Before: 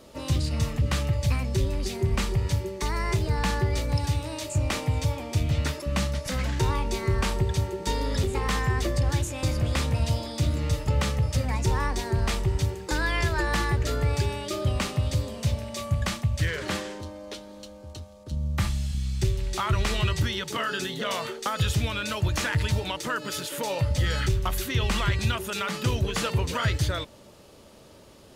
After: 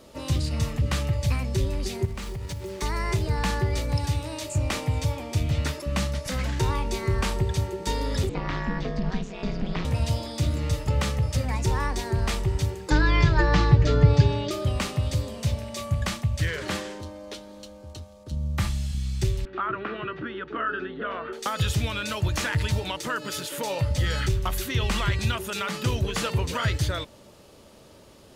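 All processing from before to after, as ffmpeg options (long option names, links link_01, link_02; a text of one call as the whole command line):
ffmpeg -i in.wav -filter_complex "[0:a]asettb=1/sr,asplit=3[link_01][link_02][link_03];[link_01]atrim=end=2.054[link_04];[link_02]atrim=start=2.05:end=2.82,asetpts=PTS-STARTPTS,afade=type=in:duration=0.004:curve=qsin,afade=type=out:start_time=0.766:duration=0.004:curve=qsin,acrusher=bits=6:mix=0:aa=0.5,acompressor=threshold=-29dB:ratio=10:attack=3.2:release=140:knee=1:detection=peak[link_05];[link_03]atrim=start=2.816[link_06];[link_04][link_05]acrossfade=duration=0.004:curve1=hsin:curve2=qsin[link_07];[link_07][link_06]acrossfade=duration=0.004:curve1=qsin:curve2=hsin,asettb=1/sr,asplit=3[link_08][link_09][link_10];[link_08]atrim=end=8.294[link_11];[link_09]atrim=start=8.29:end=9.85,asetpts=PTS-STARTPTS,afade=type=in:duration=0.004:curve=qsin,afade=type=out:start_time=1.556:duration=0.004:curve=qsin,lowpass=frequency=5200:width=0.5412,lowpass=frequency=5200:width=1.3066,acrossover=split=3100[link_12][link_13];[link_13]acompressor=threshold=-43dB:ratio=4:attack=1:release=60[link_14];[link_12][link_14]amix=inputs=2:normalize=0,aeval=exprs='val(0)*sin(2*PI*96*n/s)':channel_layout=same[link_15];[link_10]atrim=start=9.846[link_16];[link_11][link_15]acrossfade=duration=0.004:curve1=hsin:curve2=qsin[link_17];[link_17][link_16]acrossfade=duration=0.004:curve1=qsin:curve2=hsin,asettb=1/sr,asplit=3[link_18][link_19][link_20];[link_18]atrim=end=12.904[link_21];[link_19]atrim=start=12.9:end=14.51,asetpts=PTS-STARTPTS,afade=type=in:duration=0.004:curve=qsin,afade=type=out:start_time=1.606:duration=0.004:curve=qsin,lowpass=frequency=5700:width=0.5412,lowpass=frequency=5700:width=1.3066,lowshelf=frequency=280:gain=10,aecho=1:1:6.7:0.61,atrim=end_sample=71001[link_22];[link_20]atrim=start=14.506[link_23];[link_21][link_22]acrossfade=duration=0.004:curve1=hsin:curve2=qsin[link_24];[link_24][link_23]acrossfade=duration=0.004:curve1=qsin:curve2=hsin,asettb=1/sr,asplit=3[link_25][link_26][link_27];[link_25]atrim=end=19.454[link_28];[link_26]atrim=start=19.45:end=21.33,asetpts=PTS-STARTPTS,afade=type=in:duration=0.004:curve=qsin,afade=type=out:start_time=1.876:duration=0.004:curve=qsin,highpass=frequency=200:width=0.5412,highpass=frequency=200:width=1.3066,equalizer=frequency=200:width_type=q:width=4:gain=-3,equalizer=frequency=310:width_type=q:width=4:gain=5,equalizer=frequency=580:width_type=q:width=4:gain=-4,equalizer=frequency=890:width_type=q:width=4:gain=-8,equalizer=frequency=1400:width_type=q:width=4:gain=6,equalizer=frequency=2100:width_type=q:width=4:gain=-8,lowpass=frequency=2200:width=0.5412,lowpass=frequency=2200:width=1.3066,aeval=exprs='val(0)+0.00224*(sin(2*PI*60*n/s)+sin(2*PI*2*60*n/s)/2+sin(2*PI*3*60*n/s)/3+sin(2*PI*4*60*n/s)/4+sin(2*PI*5*60*n/s)/5)':channel_layout=same[link_29];[link_27]atrim=start=21.326[link_30];[link_28][link_29]acrossfade=duration=0.004:curve1=hsin:curve2=qsin[link_31];[link_31][link_30]acrossfade=duration=0.004:curve1=qsin:curve2=hsin" out.wav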